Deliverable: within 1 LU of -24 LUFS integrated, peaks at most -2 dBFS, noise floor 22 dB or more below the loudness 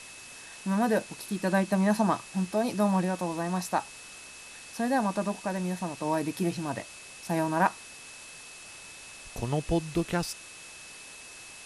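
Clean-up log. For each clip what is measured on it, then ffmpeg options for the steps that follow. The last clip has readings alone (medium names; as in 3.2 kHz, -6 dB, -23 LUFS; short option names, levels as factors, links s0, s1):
steady tone 2.6 kHz; tone level -49 dBFS; noise floor -47 dBFS; noise floor target -52 dBFS; loudness -29.5 LUFS; peak level -10.5 dBFS; loudness target -24.0 LUFS
-> -af "bandreject=f=2600:w=30"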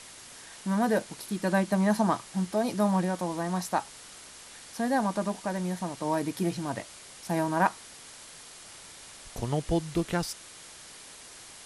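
steady tone not found; noise floor -48 dBFS; noise floor target -52 dBFS
-> -af "afftdn=nr=6:nf=-48"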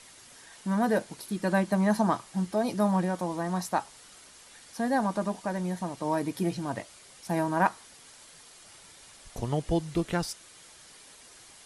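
noise floor -53 dBFS; loudness -29.5 LUFS; peak level -10.5 dBFS; loudness target -24.0 LUFS
-> -af "volume=1.88"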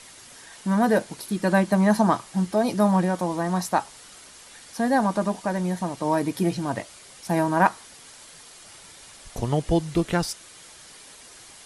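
loudness -24.0 LUFS; peak level -5.0 dBFS; noise floor -47 dBFS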